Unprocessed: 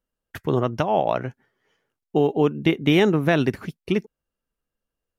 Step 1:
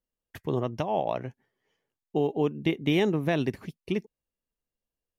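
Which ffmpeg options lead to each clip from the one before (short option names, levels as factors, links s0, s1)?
-af "equalizer=f=1400:t=o:w=0.38:g=-8.5,volume=0.473"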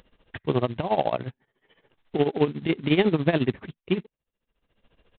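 -af "acompressor=mode=upward:threshold=0.00794:ratio=2.5,tremolo=f=14:d=0.82,aresample=8000,acrusher=bits=4:mode=log:mix=0:aa=0.000001,aresample=44100,volume=2.24"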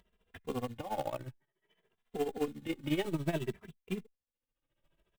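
-filter_complex "[0:a]aeval=exprs='if(lt(val(0),0),0.708*val(0),val(0))':c=same,acrusher=bits=4:mode=log:mix=0:aa=0.000001,asplit=2[s0][s1];[s1]adelay=2.6,afreqshift=0.57[s2];[s0][s2]amix=inputs=2:normalize=1,volume=0.398"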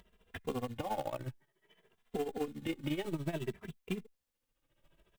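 -af "acompressor=threshold=0.01:ratio=5,volume=2.11"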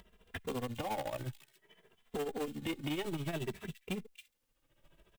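-filter_complex "[0:a]acrossover=split=2200[s0][s1];[s0]asoftclip=type=tanh:threshold=0.0168[s2];[s1]aecho=1:1:275:0.376[s3];[s2][s3]amix=inputs=2:normalize=0,volume=1.5"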